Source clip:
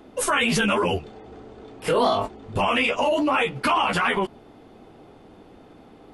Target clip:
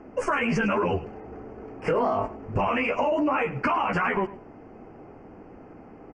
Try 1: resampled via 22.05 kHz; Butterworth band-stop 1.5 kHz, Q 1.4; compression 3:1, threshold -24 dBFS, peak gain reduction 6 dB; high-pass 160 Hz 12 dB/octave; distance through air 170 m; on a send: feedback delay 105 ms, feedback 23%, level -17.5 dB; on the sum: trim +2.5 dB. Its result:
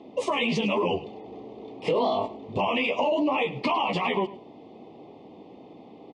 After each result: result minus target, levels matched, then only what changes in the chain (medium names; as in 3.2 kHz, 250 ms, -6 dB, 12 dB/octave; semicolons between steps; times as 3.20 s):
4 kHz band +10.0 dB; 125 Hz band -3.5 dB
change: Butterworth band-stop 3.7 kHz, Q 1.4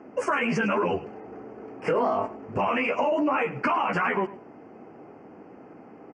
125 Hz band -4.0 dB
remove: high-pass 160 Hz 12 dB/octave